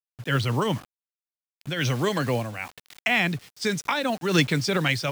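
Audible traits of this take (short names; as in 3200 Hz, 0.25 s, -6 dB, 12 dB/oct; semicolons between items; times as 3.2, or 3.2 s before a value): a quantiser's noise floor 8-bit, dither none; noise-modulated level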